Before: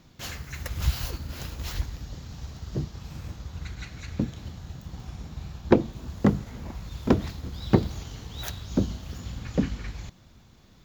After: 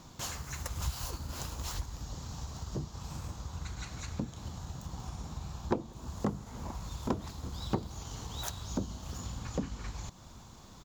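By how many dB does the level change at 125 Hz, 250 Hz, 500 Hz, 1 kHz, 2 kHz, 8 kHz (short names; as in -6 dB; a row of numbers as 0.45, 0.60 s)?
-8.0, -11.5, -11.0, -4.0, -8.0, +1.5 dB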